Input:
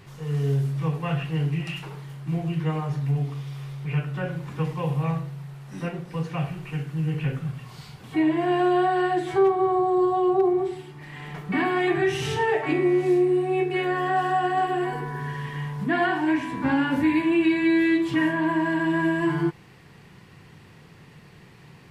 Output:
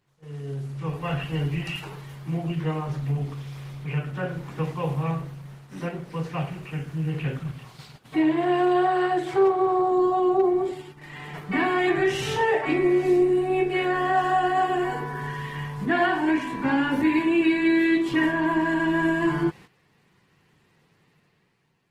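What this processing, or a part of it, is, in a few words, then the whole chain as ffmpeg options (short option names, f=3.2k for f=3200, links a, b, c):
video call: -filter_complex "[0:a]asettb=1/sr,asplit=3[a][b][c];[a]atrim=end=6.794[d];[b]atrim=start=6.79:end=8.44,asetpts=PTS-STARTPTS,afade=t=in:d=0.004:c=qsin,afade=t=out:st=1.646:d=0.004:c=qsin,adynamicequalizer=threshold=0.00141:dfrequency=3800:dqfactor=4.4:tfrequency=3800:tqfactor=4.4:attack=5:release=100:ratio=0.375:range=1.5:mode=boostabove:tftype=bell[e];[c]atrim=start=8.436[f];[d][e]acrossfade=d=0.004:c1=hsin:c2=qsin[g];[g][f]acrossfade=d=0.004:c1=qsin:c2=hsin,highpass=f=170:p=1,dynaudnorm=f=150:g=11:m=9.5dB,agate=range=-13dB:threshold=-35dB:ratio=16:detection=peak,volume=-7.5dB" -ar 48000 -c:a libopus -b:a 16k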